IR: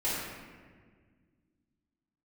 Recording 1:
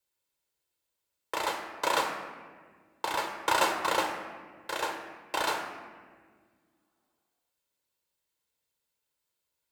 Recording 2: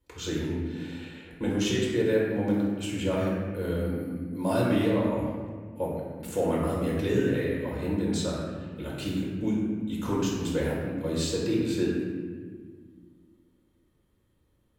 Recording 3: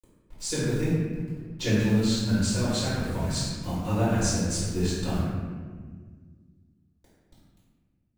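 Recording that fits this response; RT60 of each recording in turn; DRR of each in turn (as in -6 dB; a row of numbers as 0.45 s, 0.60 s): 3; 1.7 s, 1.7 s, 1.7 s; 3.5 dB, -5.0 dB, -11.0 dB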